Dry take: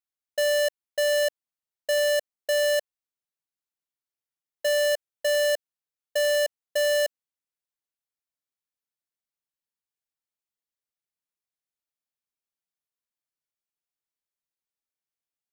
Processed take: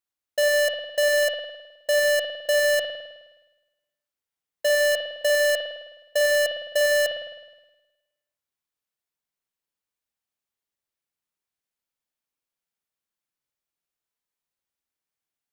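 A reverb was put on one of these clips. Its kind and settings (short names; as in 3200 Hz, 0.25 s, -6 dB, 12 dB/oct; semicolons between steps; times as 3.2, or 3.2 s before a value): spring tank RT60 1.1 s, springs 52 ms, chirp 45 ms, DRR 2.5 dB; gain +2.5 dB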